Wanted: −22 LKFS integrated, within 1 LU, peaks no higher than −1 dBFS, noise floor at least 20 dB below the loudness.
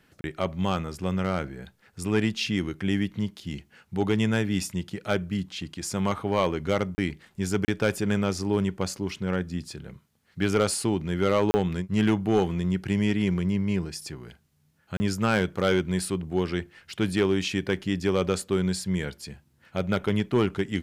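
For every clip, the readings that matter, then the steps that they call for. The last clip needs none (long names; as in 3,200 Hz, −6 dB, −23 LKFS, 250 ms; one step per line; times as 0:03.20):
share of clipped samples 0.3%; peaks flattened at −14.0 dBFS; number of dropouts 5; longest dropout 30 ms; integrated loudness −27.0 LKFS; sample peak −14.0 dBFS; target loudness −22.0 LKFS
→ clipped peaks rebuilt −14 dBFS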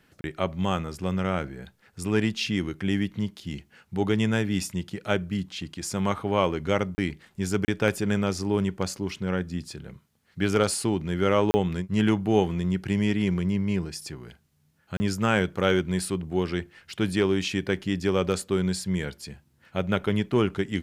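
share of clipped samples 0.0%; number of dropouts 5; longest dropout 30 ms
→ repair the gap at 0:00.21/0:06.95/0:07.65/0:11.51/0:14.97, 30 ms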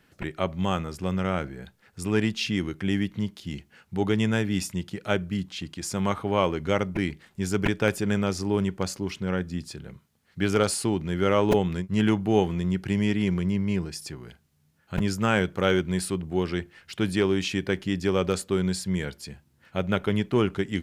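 number of dropouts 0; integrated loudness −26.5 LKFS; sample peak −6.5 dBFS; target loudness −22.0 LKFS
→ level +4.5 dB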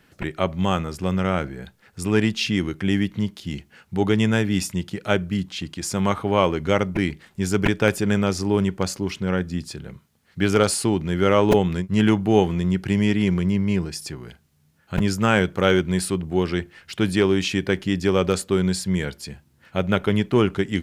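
integrated loudness −22.0 LKFS; sample peak −2.0 dBFS; background noise floor −61 dBFS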